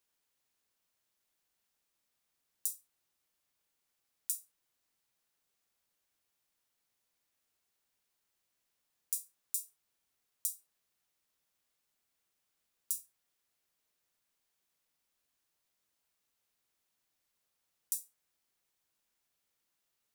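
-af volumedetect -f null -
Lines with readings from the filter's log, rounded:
mean_volume: -50.4 dB
max_volume: -8.7 dB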